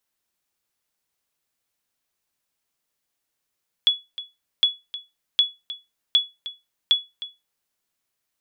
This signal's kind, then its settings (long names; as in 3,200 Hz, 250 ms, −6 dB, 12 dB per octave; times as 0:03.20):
ping with an echo 3,390 Hz, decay 0.22 s, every 0.76 s, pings 5, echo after 0.31 s, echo −15.5 dB −9 dBFS